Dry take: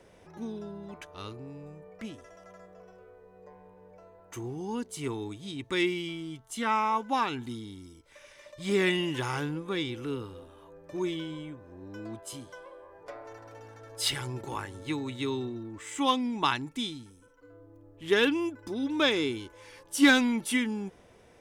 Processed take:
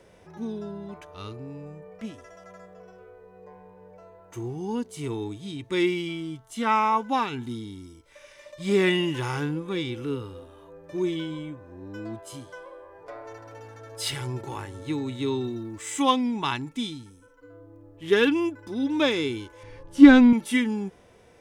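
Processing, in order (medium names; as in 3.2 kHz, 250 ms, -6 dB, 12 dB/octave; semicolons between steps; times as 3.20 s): 15.44–16.02 s: treble shelf 4.4 kHz +10 dB; harmonic-percussive split harmonic +9 dB; 19.63–20.33 s: RIAA curve playback; trim -4 dB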